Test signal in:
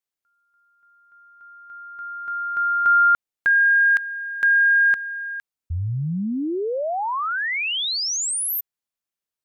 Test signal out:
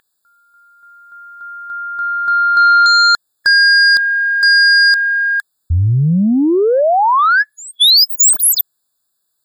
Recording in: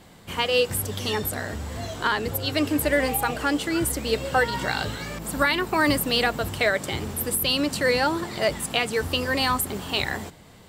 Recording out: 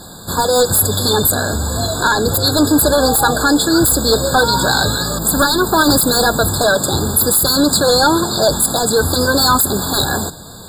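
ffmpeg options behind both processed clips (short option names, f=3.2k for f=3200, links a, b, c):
-filter_complex "[0:a]highshelf=f=3.4k:g=11.5,asplit=2[a][b];[b]aeval=exprs='0.841*sin(PI/2*5.62*val(0)/0.841)':c=same,volume=-3.5dB[c];[a][c]amix=inputs=2:normalize=0,aeval=exprs='val(0)+0.0316*sin(2*PI*2200*n/s)':c=same,afftfilt=real='re*eq(mod(floor(b*sr/1024/1700),2),0)':imag='im*eq(mod(floor(b*sr/1024/1700),2),0)':win_size=1024:overlap=0.75,volume=-3.5dB"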